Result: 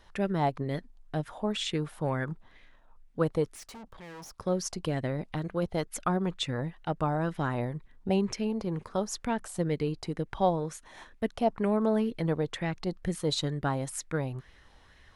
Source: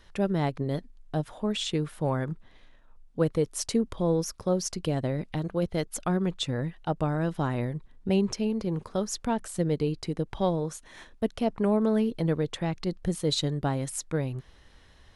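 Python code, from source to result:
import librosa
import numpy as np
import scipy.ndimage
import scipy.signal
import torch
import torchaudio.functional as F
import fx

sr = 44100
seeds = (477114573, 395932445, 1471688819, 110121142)

y = fx.tube_stage(x, sr, drive_db=42.0, bias=0.6, at=(3.55, 4.39))
y = fx.bell_lfo(y, sr, hz=2.1, low_hz=730.0, high_hz=2200.0, db=9)
y = y * 10.0 ** (-3.0 / 20.0)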